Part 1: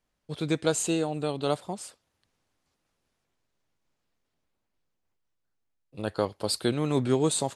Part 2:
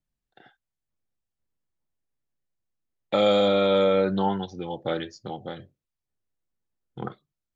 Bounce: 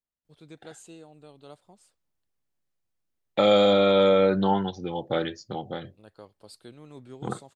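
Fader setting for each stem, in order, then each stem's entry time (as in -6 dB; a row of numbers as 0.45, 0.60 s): -20.0, +1.5 dB; 0.00, 0.25 s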